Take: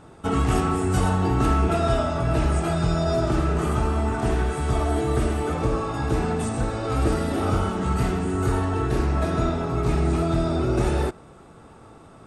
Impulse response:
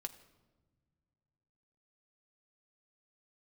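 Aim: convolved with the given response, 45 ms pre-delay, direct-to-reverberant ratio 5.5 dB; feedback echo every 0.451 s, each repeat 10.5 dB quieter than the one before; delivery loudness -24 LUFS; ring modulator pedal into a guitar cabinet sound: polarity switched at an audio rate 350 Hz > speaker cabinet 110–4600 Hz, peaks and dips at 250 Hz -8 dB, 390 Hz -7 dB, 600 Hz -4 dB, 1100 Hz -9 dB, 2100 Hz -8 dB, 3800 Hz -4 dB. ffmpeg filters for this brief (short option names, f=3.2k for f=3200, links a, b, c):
-filter_complex "[0:a]aecho=1:1:451|902|1353:0.299|0.0896|0.0269,asplit=2[a][b];[1:a]atrim=start_sample=2205,adelay=45[c];[b][c]afir=irnorm=-1:irlink=0,volume=-2.5dB[d];[a][d]amix=inputs=2:normalize=0,aeval=exprs='val(0)*sgn(sin(2*PI*350*n/s))':c=same,highpass=110,equalizer=f=250:t=q:w=4:g=-8,equalizer=f=390:t=q:w=4:g=-7,equalizer=f=600:t=q:w=4:g=-4,equalizer=f=1.1k:t=q:w=4:g=-9,equalizer=f=2.1k:t=q:w=4:g=-8,equalizer=f=3.8k:t=q:w=4:g=-4,lowpass=f=4.6k:w=0.5412,lowpass=f=4.6k:w=1.3066,volume=1.5dB"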